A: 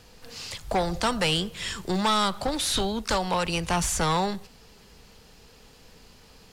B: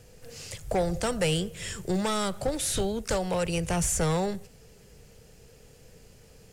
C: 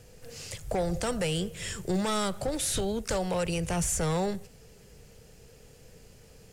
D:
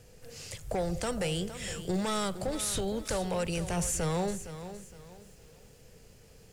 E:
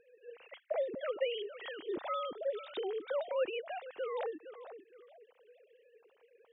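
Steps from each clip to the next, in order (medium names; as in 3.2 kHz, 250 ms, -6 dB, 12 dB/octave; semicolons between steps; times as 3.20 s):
graphic EQ 125/250/500/1000/4000/8000 Hz +7/-5/+6/-10/-9/+4 dB; trim -1 dB
peak limiter -21 dBFS, peak gain reduction 4.5 dB
bit-crushed delay 463 ms, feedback 35%, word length 9-bit, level -12 dB; trim -2.5 dB
formants replaced by sine waves; trim -5.5 dB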